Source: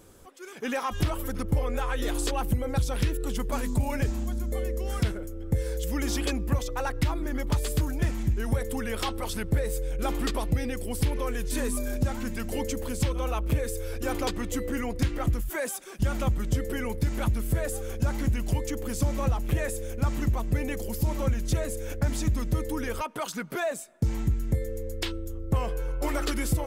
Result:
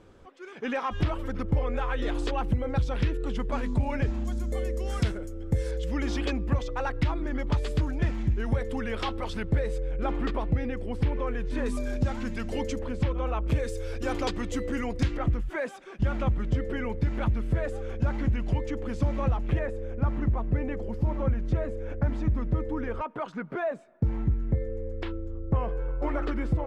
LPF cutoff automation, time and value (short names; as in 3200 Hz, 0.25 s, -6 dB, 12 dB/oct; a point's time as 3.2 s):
3200 Hz
from 4.25 s 7600 Hz
from 5.71 s 3600 Hz
from 9.78 s 2200 Hz
from 11.66 s 4700 Hz
from 12.79 s 2300 Hz
from 13.48 s 5500 Hz
from 15.17 s 2700 Hz
from 19.59 s 1600 Hz